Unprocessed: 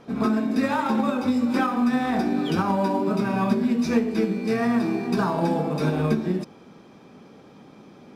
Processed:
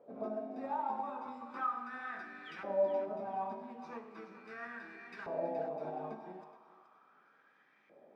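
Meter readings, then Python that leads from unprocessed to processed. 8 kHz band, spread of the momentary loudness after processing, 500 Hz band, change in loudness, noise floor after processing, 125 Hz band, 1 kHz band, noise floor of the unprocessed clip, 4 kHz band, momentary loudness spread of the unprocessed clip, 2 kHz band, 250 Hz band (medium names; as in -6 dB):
no reading, 14 LU, -11.0 dB, -16.5 dB, -68 dBFS, -29.5 dB, -12.0 dB, -49 dBFS, -23.5 dB, 2 LU, -14.5 dB, -27.0 dB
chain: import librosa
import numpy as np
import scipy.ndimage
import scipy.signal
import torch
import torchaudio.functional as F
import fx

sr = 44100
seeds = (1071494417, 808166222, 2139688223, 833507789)

p1 = fx.dynamic_eq(x, sr, hz=1200.0, q=1.0, threshold_db=-38.0, ratio=4.0, max_db=-5)
p2 = fx.filter_lfo_bandpass(p1, sr, shape='saw_up', hz=0.38, low_hz=550.0, high_hz=2000.0, q=5.9)
p3 = fx.comb_fb(p2, sr, f0_hz=53.0, decay_s=0.95, harmonics='all', damping=0.0, mix_pct=60)
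p4 = p3 + fx.echo_thinned(p3, sr, ms=423, feedback_pct=33, hz=980.0, wet_db=-10.0, dry=0)
y = F.gain(torch.from_numpy(p4), 5.0).numpy()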